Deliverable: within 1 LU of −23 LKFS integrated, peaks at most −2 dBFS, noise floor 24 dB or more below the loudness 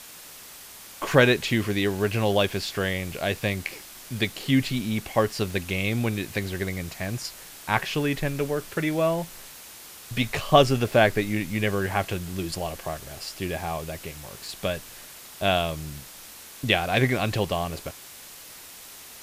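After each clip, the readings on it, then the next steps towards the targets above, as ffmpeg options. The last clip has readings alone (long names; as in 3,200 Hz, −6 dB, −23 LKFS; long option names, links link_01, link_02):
background noise floor −45 dBFS; target noise floor −50 dBFS; integrated loudness −25.5 LKFS; sample peak −2.5 dBFS; target loudness −23.0 LKFS
→ -af "afftdn=noise_reduction=6:noise_floor=-45"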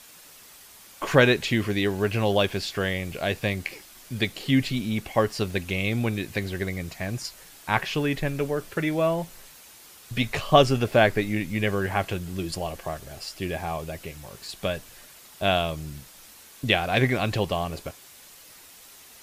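background noise floor −49 dBFS; target noise floor −50 dBFS
→ -af "afftdn=noise_reduction=6:noise_floor=-49"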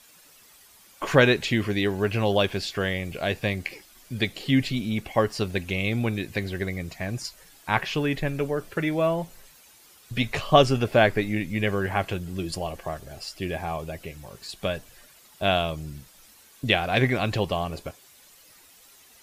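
background noise floor −54 dBFS; integrated loudness −25.5 LKFS; sample peak −2.5 dBFS; target loudness −23.0 LKFS
→ -af "volume=2.5dB,alimiter=limit=-2dB:level=0:latency=1"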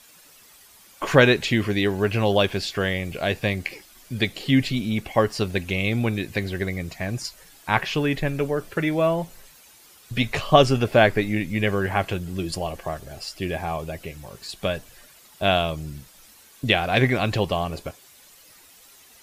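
integrated loudness −23.5 LKFS; sample peak −2.0 dBFS; background noise floor −52 dBFS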